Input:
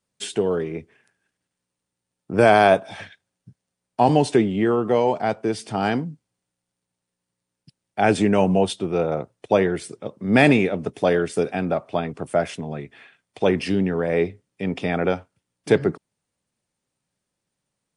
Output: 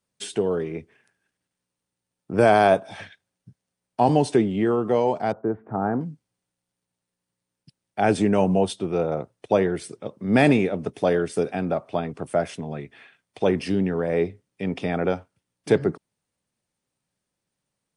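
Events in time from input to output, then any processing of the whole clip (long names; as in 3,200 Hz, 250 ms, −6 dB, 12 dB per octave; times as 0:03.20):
0:05.32–0:06.01: Butterworth low-pass 1,500 Hz
whole clip: notch filter 7,200 Hz, Q 23; dynamic equaliser 2,500 Hz, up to −4 dB, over −35 dBFS, Q 0.82; level −1.5 dB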